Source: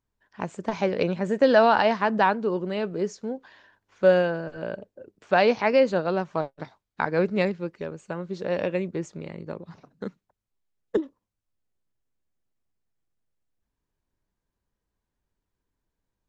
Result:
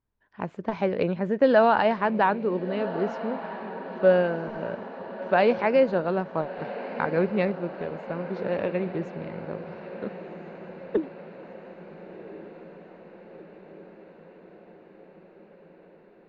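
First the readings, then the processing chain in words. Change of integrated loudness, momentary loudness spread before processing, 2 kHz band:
-1.5 dB, 18 LU, -2.0 dB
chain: distance through air 260 m; echo that smears into a reverb 1404 ms, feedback 64%, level -13 dB

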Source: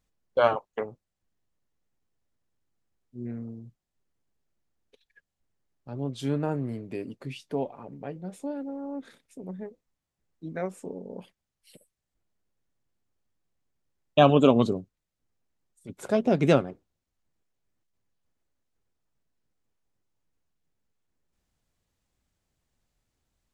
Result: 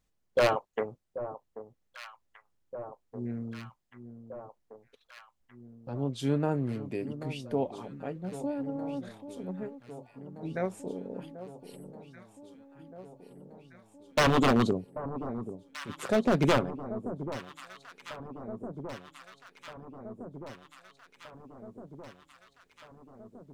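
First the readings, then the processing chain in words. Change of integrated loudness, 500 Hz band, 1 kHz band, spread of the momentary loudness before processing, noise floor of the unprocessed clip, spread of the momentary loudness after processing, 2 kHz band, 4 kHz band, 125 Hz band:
-5.5 dB, -3.5 dB, -2.5 dB, 20 LU, -85 dBFS, 23 LU, +2.5 dB, +0.5 dB, -2.0 dB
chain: wavefolder -16.5 dBFS; echo whose repeats swap between lows and highs 786 ms, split 1.1 kHz, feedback 81%, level -12 dB

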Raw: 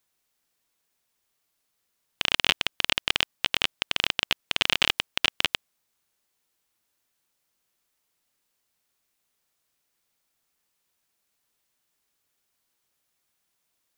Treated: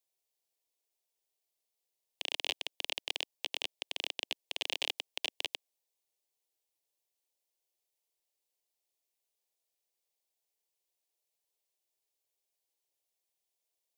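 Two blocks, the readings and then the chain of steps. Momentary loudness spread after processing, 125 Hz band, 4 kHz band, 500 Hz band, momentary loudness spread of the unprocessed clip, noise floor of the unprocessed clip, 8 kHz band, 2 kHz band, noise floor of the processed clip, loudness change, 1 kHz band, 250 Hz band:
5 LU, under -20 dB, -11.5 dB, -8.5 dB, 5 LU, -77 dBFS, -9.5 dB, -14.0 dB, under -85 dBFS, -12.0 dB, -14.5 dB, -16.5 dB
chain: resonant low shelf 230 Hz -8 dB, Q 1.5; static phaser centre 570 Hz, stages 4; trim -9 dB

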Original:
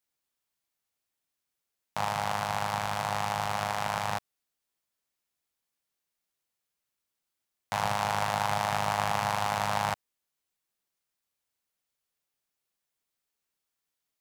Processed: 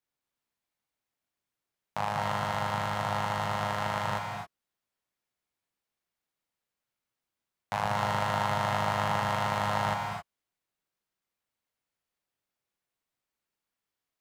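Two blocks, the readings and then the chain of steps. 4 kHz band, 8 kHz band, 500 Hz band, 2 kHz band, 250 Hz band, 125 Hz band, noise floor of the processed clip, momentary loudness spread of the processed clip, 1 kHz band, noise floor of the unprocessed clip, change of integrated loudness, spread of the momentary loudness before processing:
-1.5 dB, -6.0 dB, +1.5 dB, 0.0 dB, +3.5 dB, +3.0 dB, under -85 dBFS, 8 LU, -0.5 dB, -85 dBFS, 0.0 dB, 6 LU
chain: treble shelf 3.6 kHz -9.5 dB; gated-style reverb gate 290 ms rising, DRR 2.5 dB

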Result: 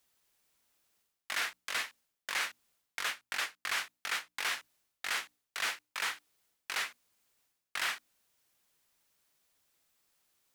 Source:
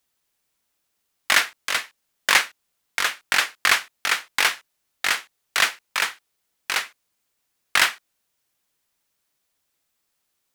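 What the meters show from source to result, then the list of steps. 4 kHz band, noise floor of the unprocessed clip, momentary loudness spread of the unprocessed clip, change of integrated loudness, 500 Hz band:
-13.5 dB, -75 dBFS, 10 LU, -14.0 dB, -14.0 dB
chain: reverse; compression 10:1, threshold -32 dBFS, peak gain reduction 20.5 dB; reverse; hum notches 60/120/180/240/300 Hz

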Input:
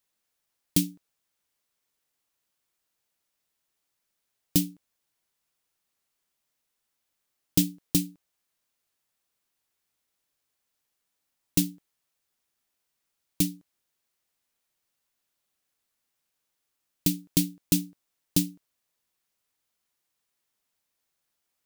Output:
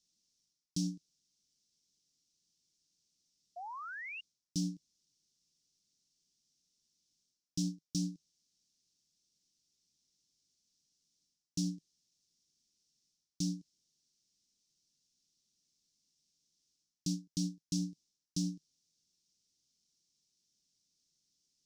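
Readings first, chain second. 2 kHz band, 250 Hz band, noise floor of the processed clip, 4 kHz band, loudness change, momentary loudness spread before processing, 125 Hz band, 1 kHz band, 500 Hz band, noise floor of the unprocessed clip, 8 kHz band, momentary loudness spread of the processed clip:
-1.0 dB, -8.5 dB, under -85 dBFS, -9.0 dB, -11.5 dB, 9 LU, -7.0 dB, no reading, under -15 dB, -81 dBFS, -11.5 dB, 11 LU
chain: FFT filter 110 Hz 0 dB, 160 Hz +7 dB, 310 Hz +1 dB, 1.2 kHz -29 dB, 5.6 kHz +12 dB, 15 kHz -23 dB; reverse; compression 8:1, threshold -33 dBFS, peak gain reduction 19.5 dB; reverse; painted sound rise, 3.56–4.21 s, 680–2900 Hz -44 dBFS

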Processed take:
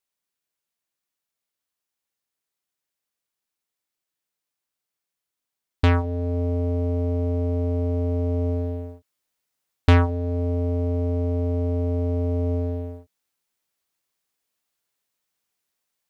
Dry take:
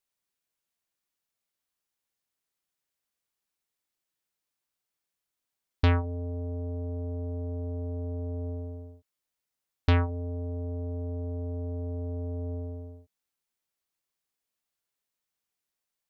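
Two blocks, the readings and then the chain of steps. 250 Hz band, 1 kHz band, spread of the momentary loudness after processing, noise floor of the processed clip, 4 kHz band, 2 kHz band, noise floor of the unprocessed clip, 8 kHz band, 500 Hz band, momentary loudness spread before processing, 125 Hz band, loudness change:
+9.5 dB, +7.5 dB, 8 LU, under -85 dBFS, +5.0 dB, +6.5 dB, under -85 dBFS, no reading, +10.5 dB, 12 LU, +8.0 dB, +8.5 dB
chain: bass shelf 71 Hz -5.5 dB; gain riding within 3 dB 0.5 s; waveshaping leveller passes 1; trim +5.5 dB

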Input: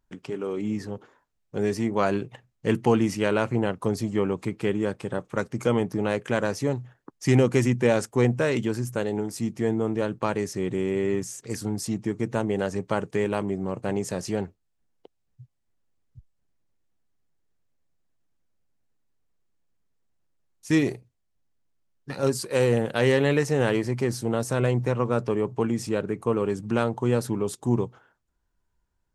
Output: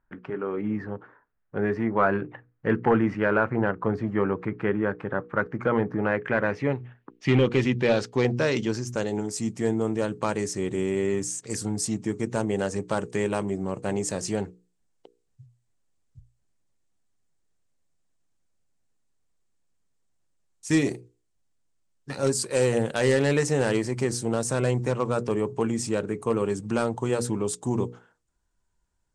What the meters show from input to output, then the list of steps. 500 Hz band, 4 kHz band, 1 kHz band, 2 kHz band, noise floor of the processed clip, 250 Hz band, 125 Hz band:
-0.5 dB, +0.5 dB, +1.0 dB, +2.0 dB, -73 dBFS, -1.0 dB, -2.0 dB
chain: hum notches 60/120/180/240/300/360/420/480 Hz; hard clipper -13.5 dBFS, distortion -20 dB; low-pass sweep 1.6 kHz -> 8.3 kHz, 5.92–9.53 s

